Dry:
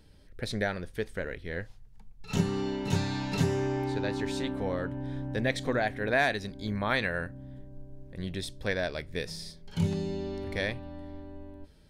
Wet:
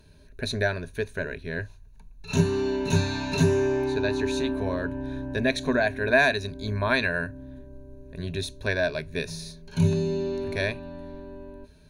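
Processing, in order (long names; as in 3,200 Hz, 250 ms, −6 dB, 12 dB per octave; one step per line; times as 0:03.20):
EQ curve with evenly spaced ripples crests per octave 1.5, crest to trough 12 dB
level +2.5 dB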